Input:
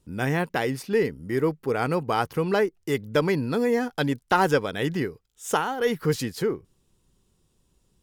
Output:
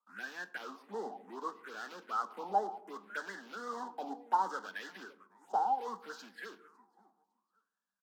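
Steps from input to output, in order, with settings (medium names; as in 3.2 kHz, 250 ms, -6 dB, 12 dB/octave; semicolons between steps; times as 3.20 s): block-companded coder 3-bit; feedback delay 555 ms, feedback 21%, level -19 dB; in parallel at -5 dB: integer overflow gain 23 dB; on the sum: steep high-pass 190 Hz 96 dB/octave; tone controls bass +12 dB, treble +12 dB; touch-sensitive phaser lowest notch 350 Hz, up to 2.4 kHz, full sweep at -15 dBFS; wah-wah 0.67 Hz 780–1700 Hz, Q 13; on a send at -14 dB: reverberation RT60 0.95 s, pre-delay 4 ms; on the sum: tape noise reduction on one side only decoder only; trim +4 dB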